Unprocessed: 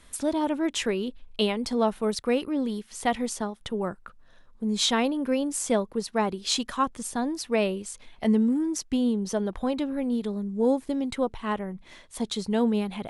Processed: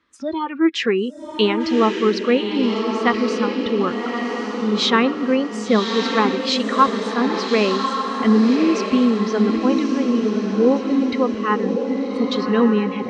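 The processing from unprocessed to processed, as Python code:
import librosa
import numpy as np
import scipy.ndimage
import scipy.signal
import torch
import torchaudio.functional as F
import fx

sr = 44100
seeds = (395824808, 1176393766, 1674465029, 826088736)

y = fx.cabinet(x, sr, low_hz=120.0, low_slope=12, high_hz=4800.0, hz=(160.0, 320.0, 680.0, 1200.0, 1800.0, 3500.0), db=(-7, 9, -9, 8, 3, -3))
y = fx.noise_reduce_blind(y, sr, reduce_db=18)
y = fx.echo_diffused(y, sr, ms=1152, feedback_pct=50, wet_db=-4.0)
y = F.gain(torch.from_numpy(y), 7.5).numpy()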